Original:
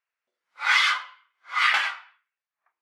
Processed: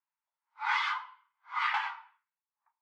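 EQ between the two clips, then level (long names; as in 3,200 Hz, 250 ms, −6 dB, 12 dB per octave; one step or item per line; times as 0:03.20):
four-pole ladder high-pass 850 Hz, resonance 80%
high-frequency loss of the air 100 metres
0.0 dB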